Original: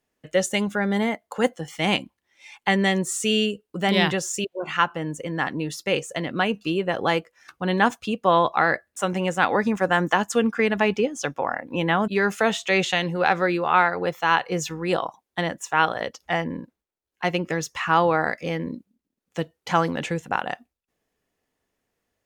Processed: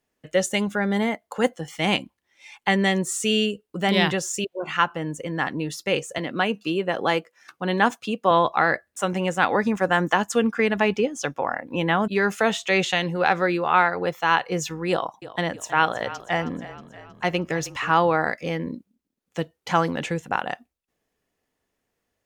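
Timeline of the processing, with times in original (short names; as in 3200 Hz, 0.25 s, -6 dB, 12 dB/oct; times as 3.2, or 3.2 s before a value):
6.18–8.31 HPF 160 Hz
14.9–17.91 frequency-shifting echo 0.317 s, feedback 58%, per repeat -30 Hz, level -16 dB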